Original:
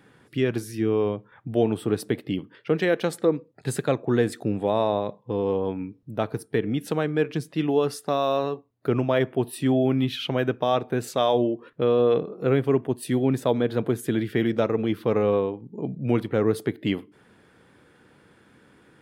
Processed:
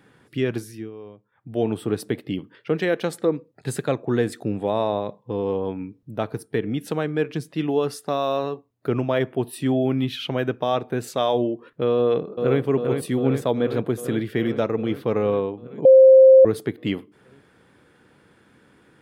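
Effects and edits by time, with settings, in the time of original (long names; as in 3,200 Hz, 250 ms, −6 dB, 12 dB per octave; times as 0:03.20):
0:00.56–0:01.68: duck −16.5 dB, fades 0.35 s
0:11.97–0:12.61: delay throw 400 ms, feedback 75%, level −6 dB
0:15.85–0:16.45: beep over 527 Hz −6.5 dBFS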